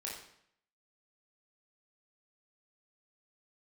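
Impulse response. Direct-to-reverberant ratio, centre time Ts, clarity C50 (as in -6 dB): -4.0 dB, 44 ms, 3.0 dB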